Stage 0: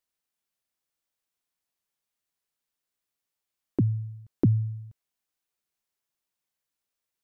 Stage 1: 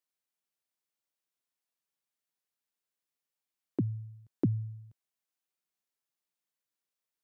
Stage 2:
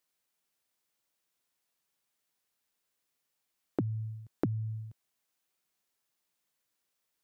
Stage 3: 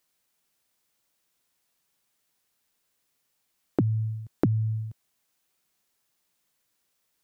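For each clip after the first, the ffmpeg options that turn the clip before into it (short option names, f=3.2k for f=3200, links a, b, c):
-af "highpass=120,volume=-5dB"
-af "acompressor=threshold=-37dB:ratio=6,volume=8dB"
-af "bass=f=250:g=3,treble=f=4k:g=1,volume=6dB"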